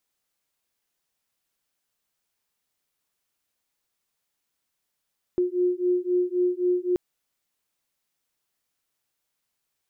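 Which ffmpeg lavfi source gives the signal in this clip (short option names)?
-f lavfi -i "aevalsrc='0.0631*(sin(2*PI*357*t)+sin(2*PI*360.8*t))':d=1.58:s=44100"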